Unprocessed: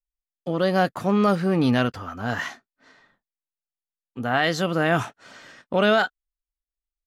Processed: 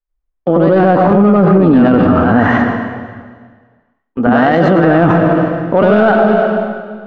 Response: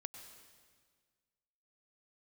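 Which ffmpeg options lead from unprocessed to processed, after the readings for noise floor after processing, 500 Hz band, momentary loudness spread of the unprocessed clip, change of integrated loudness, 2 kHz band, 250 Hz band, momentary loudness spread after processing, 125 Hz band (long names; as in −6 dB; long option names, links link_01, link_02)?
−71 dBFS, +14.0 dB, 11 LU, +12.5 dB, +8.5 dB, +15.5 dB, 10 LU, +13.5 dB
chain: -filter_complex "[0:a]lowpass=1500,agate=range=-11dB:threshold=-47dB:ratio=16:detection=peak,equalizer=frequency=120:width_type=o:width=0.69:gain=-13,asoftclip=type=tanh:threshold=-11.5dB,asplit=2[link_01][link_02];[1:a]atrim=start_sample=2205,lowshelf=frequency=470:gain=11.5,adelay=93[link_03];[link_02][link_03]afir=irnorm=-1:irlink=0,volume=6.5dB[link_04];[link_01][link_04]amix=inputs=2:normalize=0,alimiter=level_in=18.5dB:limit=-1dB:release=50:level=0:latency=1,volume=-1dB"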